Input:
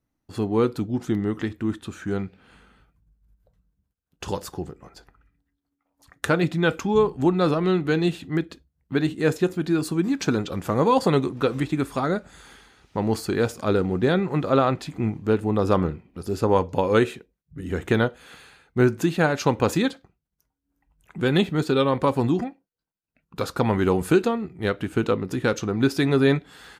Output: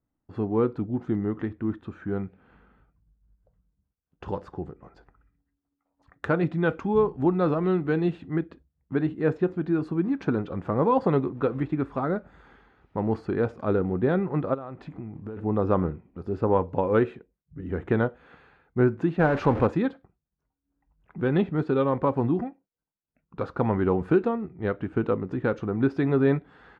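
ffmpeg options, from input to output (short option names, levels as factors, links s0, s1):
-filter_complex "[0:a]asettb=1/sr,asplit=3[s0][s1][s2];[s0]atrim=end=4.654[s3];[s1]atrim=start=4.65:end=8.38,asetpts=PTS-STARTPTS,afade=t=in:d=0.004:c=qsin,afade=t=out:st=3.726:d=0.004:c=qsin,highshelf=f=4600:g=7.5[s4];[s2]atrim=start=8.376[s5];[s3][s4]acrossfade=d=0.004:c1=hsin:c2=qsin[s6];[s6][s5]acrossfade=d=0.004:c1=qsin:c2=hsin,asplit=3[s7][s8][s9];[s7]afade=t=out:st=14.53:d=0.02[s10];[s8]acompressor=threshold=0.0355:ratio=16:attack=3.2:release=140:knee=1:detection=peak,afade=t=in:st=14.53:d=0.02,afade=t=out:st=15.36:d=0.02[s11];[s9]afade=t=in:st=15.36:d=0.02[s12];[s10][s11][s12]amix=inputs=3:normalize=0,asettb=1/sr,asplit=3[s13][s14][s15];[s13]atrim=end=19.194[s16];[s14]atrim=start=19.19:end=19.67,asetpts=PTS-STARTPTS,afade=t=in:d=0.004:c=qsin,afade=t=out:st=0.476:d=0.004:c=qsin,aeval=exprs='val(0)+0.5*0.0794*sgn(val(0))':c=same[s17];[s15]atrim=start=19.666[s18];[s16][s17]acrossfade=d=0.004:c1=hsin:c2=qsin[s19];[s19][s18]acrossfade=d=0.004:c1=qsin:c2=hsin,lowpass=1500,volume=0.75"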